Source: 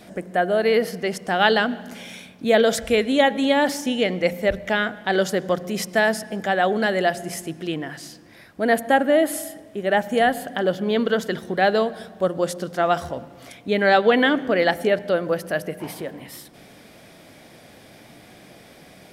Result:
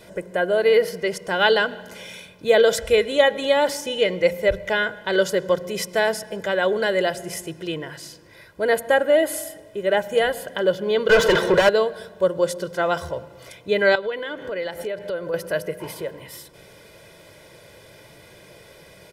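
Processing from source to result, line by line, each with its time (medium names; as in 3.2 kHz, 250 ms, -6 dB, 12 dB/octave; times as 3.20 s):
11.09–11.69 s: overdrive pedal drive 30 dB, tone 2 kHz, clips at -7.5 dBFS
13.95–15.34 s: compression 4:1, threshold -27 dBFS
whole clip: comb 2 ms, depth 75%; trim -1.5 dB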